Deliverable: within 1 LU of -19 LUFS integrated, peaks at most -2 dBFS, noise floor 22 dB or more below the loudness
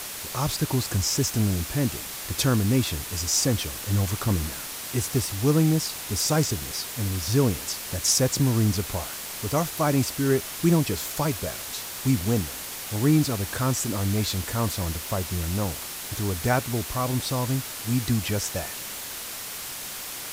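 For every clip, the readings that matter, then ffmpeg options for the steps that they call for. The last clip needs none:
noise floor -36 dBFS; noise floor target -48 dBFS; loudness -25.5 LUFS; peak -9.0 dBFS; loudness target -19.0 LUFS
-> -af "afftdn=nr=12:nf=-36"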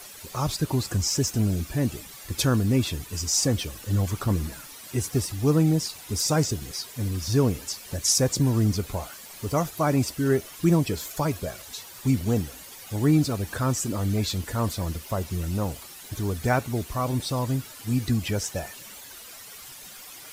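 noise floor -44 dBFS; noise floor target -48 dBFS
-> -af "afftdn=nr=6:nf=-44"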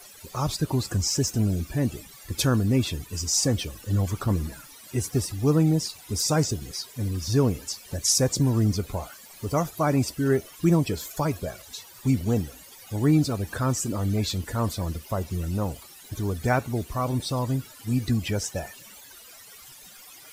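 noise floor -48 dBFS; loudness -26.0 LUFS; peak -9.5 dBFS; loudness target -19.0 LUFS
-> -af "volume=7dB"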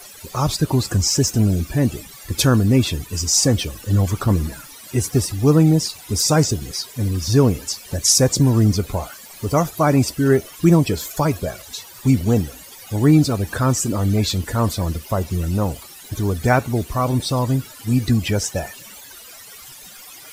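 loudness -19.0 LUFS; peak -2.5 dBFS; noise floor -41 dBFS

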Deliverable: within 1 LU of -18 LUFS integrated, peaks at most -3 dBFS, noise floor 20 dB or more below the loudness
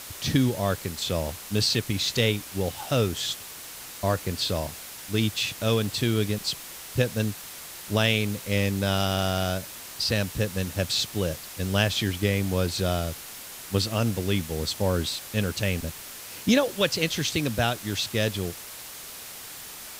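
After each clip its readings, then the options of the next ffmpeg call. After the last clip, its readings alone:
noise floor -41 dBFS; noise floor target -47 dBFS; loudness -26.5 LUFS; peak -7.5 dBFS; loudness target -18.0 LUFS
-> -af "afftdn=nr=6:nf=-41"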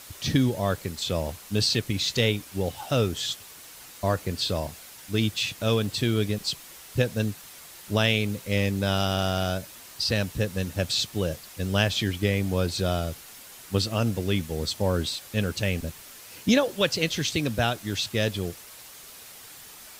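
noise floor -46 dBFS; noise floor target -47 dBFS
-> -af "afftdn=nr=6:nf=-46"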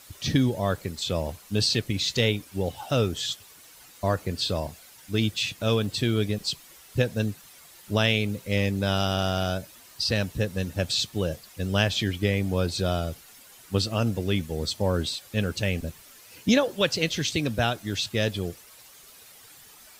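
noise floor -51 dBFS; loudness -27.0 LUFS; peak -7.5 dBFS; loudness target -18.0 LUFS
-> -af "volume=9dB,alimiter=limit=-3dB:level=0:latency=1"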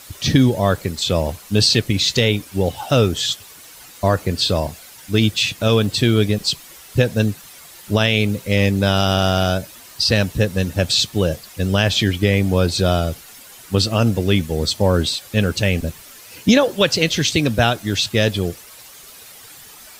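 loudness -18.5 LUFS; peak -3.0 dBFS; noise floor -42 dBFS

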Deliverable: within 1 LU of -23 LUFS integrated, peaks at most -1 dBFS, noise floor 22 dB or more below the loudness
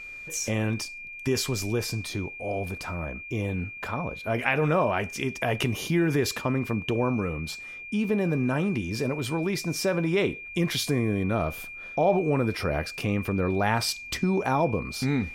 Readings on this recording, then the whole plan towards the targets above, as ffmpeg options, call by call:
steady tone 2400 Hz; tone level -38 dBFS; loudness -27.5 LUFS; peak -7.5 dBFS; loudness target -23.0 LUFS
-> -af "bandreject=f=2.4k:w=30"
-af "volume=4.5dB"

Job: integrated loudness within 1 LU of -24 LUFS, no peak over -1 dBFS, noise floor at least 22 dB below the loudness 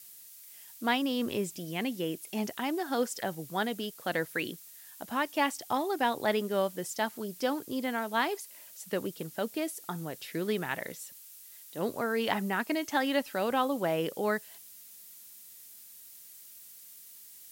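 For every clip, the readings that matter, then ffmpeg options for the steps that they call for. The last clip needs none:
noise floor -51 dBFS; noise floor target -54 dBFS; loudness -32.0 LUFS; peak -12.5 dBFS; loudness target -24.0 LUFS
-> -af "afftdn=nr=6:nf=-51"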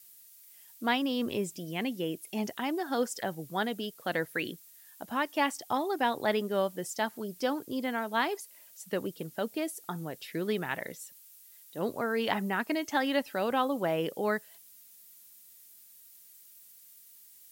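noise floor -56 dBFS; loudness -32.5 LUFS; peak -12.5 dBFS; loudness target -24.0 LUFS
-> -af "volume=8.5dB"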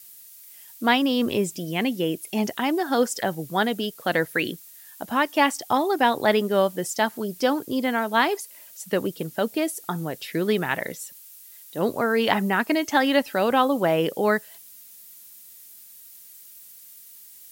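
loudness -24.0 LUFS; peak -4.0 dBFS; noise floor -47 dBFS

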